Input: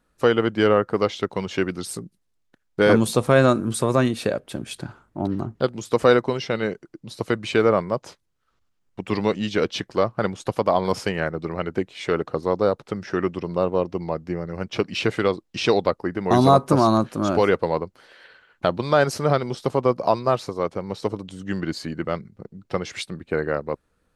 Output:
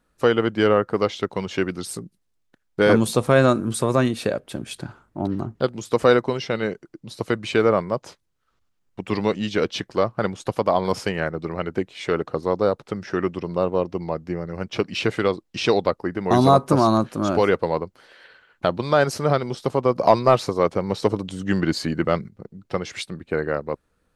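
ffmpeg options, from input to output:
ffmpeg -i in.wav -filter_complex "[0:a]asettb=1/sr,asplit=3[link_01][link_02][link_03];[link_01]atrim=end=19.954[link_04];[link_02]atrim=start=19.95:end=22.29,asetpts=PTS-STARTPTS,afade=type=in:duration=0.004:curve=qsin,afade=type=out:start_time=2.336:duration=0.004:curve=qsin,acontrast=42[link_05];[link_03]atrim=start=22.286[link_06];[link_04][link_05]acrossfade=duration=0.004:curve1=hsin:curve2=qsin[link_07];[link_07][link_06]acrossfade=duration=0.004:curve1=qsin:curve2=hsin" out.wav

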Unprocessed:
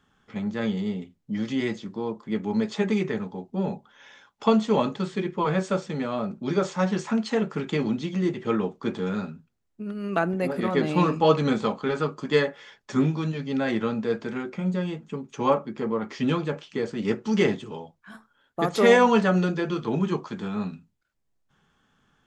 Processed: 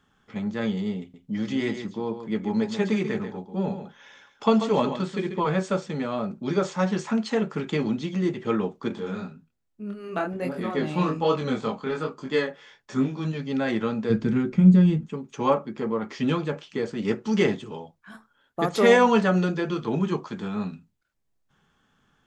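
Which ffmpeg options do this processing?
ffmpeg -i in.wav -filter_complex "[0:a]asettb=1/sr,asplit=3[link_01][link_02][link_03];[link_01]atrim=end=1.004[link_04];[link_02]atrim=start=1:end=5.4,asetpts=PTS-STARTPTS,afade=type=in:duration=0.004:curve=qsin,afade=type=out:start_time=4.396:duration=0.004:curve=qsin,aecho=1:1:138:0.335,atrim=end_sample=194040[link_05];[link_03]atrim=start=5.396[link_06];[link_04][link_05]acrossfade=duration=0.004:curve1=hsin:curve2=qsin[link_07];[link_07][link_06]acrossfade=duration=0.004:curve1=qsin:curve2=hsin,asettb=1/sr,asplit=3[link_08][link_09][link_10];[link_08]atrim=end=8.884[link_11];[link_09]atrim=start=8.88:end=13.25,asetpts=PTS-STARTPTS,afade=type=in:duration=0.004:curve=qsin,afade=type=out:start_time=4.366:duration=0.004:curve=qsin,flanger=delay=22.5:depth=5:speed=1.2[link_12];[link_10]atrim=start=13.246[link_13];[link_11][link_12]acrossfade=duration=0.004:curve1=hsin:curve2=qsin[link_14];[link_14][link_13]acrossfade=duration=0.004:curve1=qsin:curve2=hsin,asplit=3[link_15][link_16][link_17];[link_15]afade=type=out:start_time=14.09:duration=0.02[link_18];[link_16]asubboost=boost=6.5:cutoff=240,afade=type=in:start_time=14.09:duration=0.02,afade=type=out:start_time=15.05:duration=0.02[link_19];[link_17]afade=type=in:start_time=15.05:duration=0.02[link_20];[link_18][link_19][link_20]amix=inputs=3:normalize=0" out.wav

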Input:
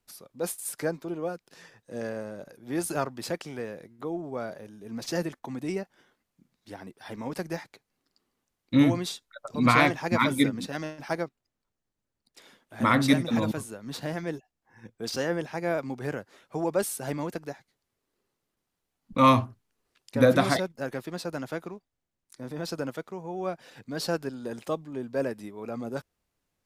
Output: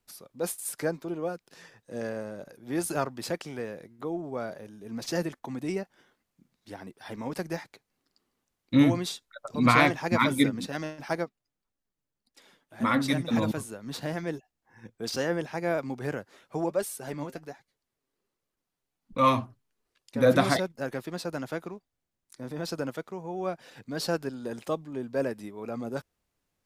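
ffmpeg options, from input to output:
ffmpeg -i in.wav -filter_complex "[0:a]asplit=3[link_01][link_02][link_03];[link_01]afade=type=out:start_time=11.24:duration=0.02[link_04];[link_02]flanger=delay=3.5:depth=3.5:regen=39:speed=1.7:shape=sinusoidal,afade=type=in:start_time=11.24:duration=0.02,afade=type=out:start_time=13.27:duration=0.02[link_05];[link_03]afade=type=in:start_time=13.27:duration=0.02[link_06];[link_04][link_05][link_06]amix=inputs=3:normalize=0,asplit=3[link_07][link_08][link_09];[link_07]afade=type=out:start_time=16.65:duration=0.02[link_10];[link_08]flanger=delay=1.7:depth=5.9:regen=53:speed=1.3:shape=sinusoidal,afade=type=in:start_time=16.65:duration=0.02,afade=type=out:start_time=20.25:duration=0.02[link_11];[link_09]afade=type=in:start_time=20.25:duration=0.02[link_12];[link_10][link_11][link_12]amix=inputs=3:normalize=0" out.wav

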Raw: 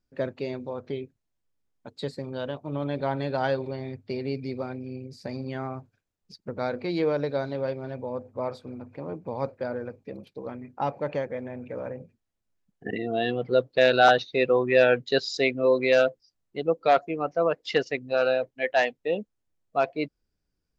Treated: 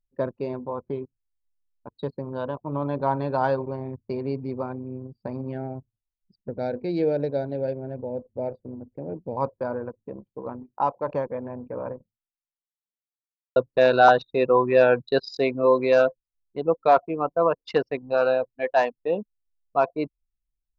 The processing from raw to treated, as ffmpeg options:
ffmpeg -i in.wav -filter_complex "[0:a]asettb=1/sr,asplit=3[link_01][link_02][link_03];[link_01]atrim=end=5.524[link_04];[link_02]atrim=start=5.52:end=9.37,asetpts=PTS-STARTPTS,afade=type=in:duration=0.004:curve=qsin,afade=type=out:start_time=3.846:duration=0.004:curve=qsin,asuperstop=centerf=1100:order=4:qfactor=1.2[link_05];[link_03]atrim=start=9.366[link_06];[link_04][link_05]acrossfade=duration=0.004:curve1=hsin:curve2=qsin[link_07];[link_07][link_06]acrossfade=duration=0.004:curve1=qsin:curve2=hsin,asplit=3[link_08][link_09][link_10];[link_08]afade=type=out:start_time=10.62:duration=0.02[link_11];[link_09]lowshelf=frequency=170:gain=-11.5,afade=type=in:start_time=10.62:duration=0.02,afade=type=out:start_time=11.07:duration=0.02[link_12];[link_10]afade=type=in:start_time=11.07:duration=0.02[link_13];[link_11][link_12][link_13]amix=inputs=3:normalize=0,asplit=2[link_14][link_15];[link_14]atrim=end=13.56,asetpts=PTS-STARTPTS,afade=type=out:start_time=11.92:duration=1.64:curve=exp[link_16];[link_15]atrim=start=13.56,asetpts=PTS-STARTPTS,afade=type=in:duration=0.004:curve=hsin[link_17];[link_16][link_17]concat=n=2:v=0:a=1,aemphasis=mode=reproduction:type=50kf,anlmdn=1,equalizer=frequency=1000:width_type=o:width=0.33:gain=11,equalizer=frequency=2000:width_type=o:width=0.33:gain=-10,equalizer=frequency=3150:width_type=o:width=0.33:gain=-9,volume=2dB" out.wav

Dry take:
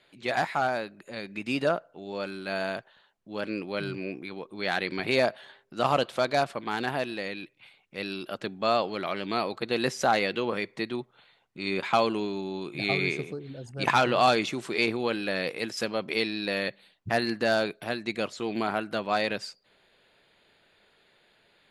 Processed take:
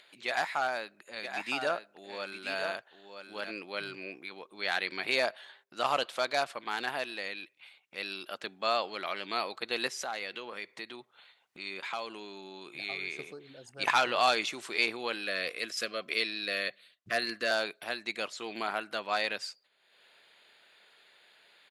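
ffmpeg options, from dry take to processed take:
ffmpeg -i in.wav -filter_complex "[0:a]asplit=3[link_01][link_02][link_03];[link_01]afade=type=out:start_time=1.22:duration=0.02[link_04];[link_02]aecho=1:1:965:0.398,afade=type=in:start_time=1.22:duration=0.02,afade=type=out:start_time=3.5:duration=0.02[link_05];[link_03]afade=type=in:start_time=3.5:duration=0.02[link_06];[link_04][link_05][link_06]amix=inputs=3:normalize=0,asettb=1/sr,asplit=3[link_07][link_08][link_09];[link_07]atrim=end=9.874[link_10];[link_08]atrim=start=9.87:end=13.19,asetpts=PTS-STARTPTS,afade=type=in:duration=0.004:curve=qsin,afade=type=out:start_time=3.316:duration=0.004:curve=qsin,acompressor=threshold=-35dB:ratio=2:attack=3.2:release=140:knee=1:detection=peak[link_11];[link_09]atrim=start=13.186[link_12];[link_10][link_11]acrossfade=duration=0.004:curve1=hsin:curve2=qsin[link_13];[link_13][link_12]acrossfade=duration=0.004:curve1=qsin:curve2=hsin,asettb=1/sr,asplit=3[link_14][link_15][link_16];[link_14]atrim=end=15.274[link_17];[link_15]atrim=start=15.27:end=17.51,asetpts=PTS-STARTPTS,afade=type=in:duration=0.004:curve=qsin,afade=type=out:start_time=2.236:duration=0.004:curve=qsin,asuperstop=centerf=870:order=20:qfactor=3.2[link_18];[link_16]atrim=start=17.506[link_19];[link_17][link_18]acrossfade=duration=0.004:curve1=hsin:curve2=qsin[link_20];[link_20][link_19]acrossfade=duration=0.004:curve1=qsin:curve2=hsin,agate=range=-8dB:threshold=-59dB:ratio=16:detection=peak,highpass=frequency=1100:poles=1,acompressor=mode=upward:threshold=-49dB:ratio=2.5" out.wav

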